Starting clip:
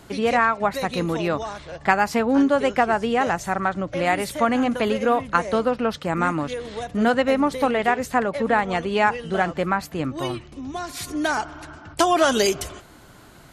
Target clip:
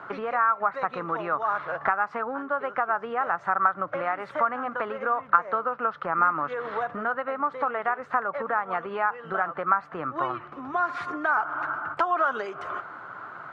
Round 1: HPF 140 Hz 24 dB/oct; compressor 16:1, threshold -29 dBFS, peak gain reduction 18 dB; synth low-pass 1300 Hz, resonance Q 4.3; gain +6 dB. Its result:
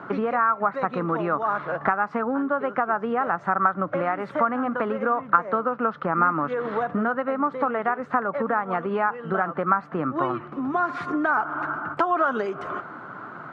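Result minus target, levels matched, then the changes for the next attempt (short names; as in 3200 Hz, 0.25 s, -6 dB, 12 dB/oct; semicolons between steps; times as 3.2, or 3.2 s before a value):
250 Hz band +9.0 dB
add after synth low-pass: bell 220 Hz -13 dB 1.9 oct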